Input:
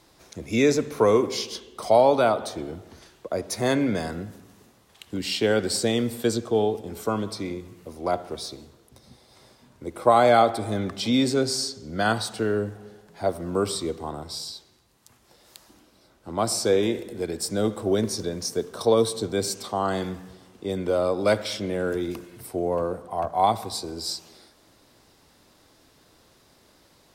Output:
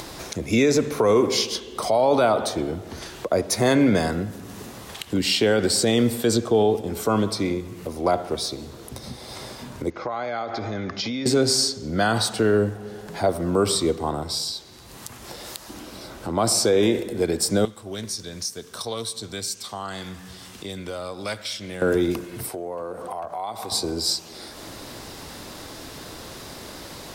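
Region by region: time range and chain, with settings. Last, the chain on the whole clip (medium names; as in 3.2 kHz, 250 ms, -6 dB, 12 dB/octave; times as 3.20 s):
9.90–11.26 s: compression 16:1, threshold -26 dBFS + rippled Chebyshev low-pass 6.8 kHz, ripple 6 dB
17.65–21.82 s: amplifier tone stack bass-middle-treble 5-5-5 + loudspeaker Doppler distortion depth 0.12 ms
22.49–23.72 s: bass shelf 270 Hz -11 dB + compression 3:1, threshold -40 dBFS
whole clip: upward compressor, threshold -33 dBFS; loudness maximiser +16 dB; trim -9 dB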